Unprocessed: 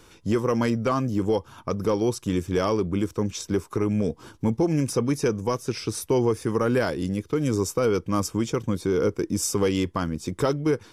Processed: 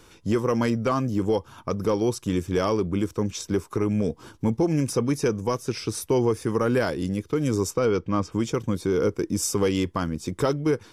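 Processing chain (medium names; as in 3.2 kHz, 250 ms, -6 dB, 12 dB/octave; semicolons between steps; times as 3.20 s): 7.70–8.31 s: low-pass 7.6 kHz -> 3 kHz 12 dB/octave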